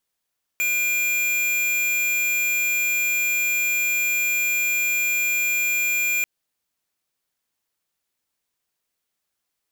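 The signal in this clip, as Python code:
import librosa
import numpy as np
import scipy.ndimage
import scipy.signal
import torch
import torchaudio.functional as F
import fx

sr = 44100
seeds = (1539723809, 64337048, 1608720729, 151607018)

y = fx.tone(sr, length_s=5.64, wave='square', hz=2400.0, level_db=-22.0)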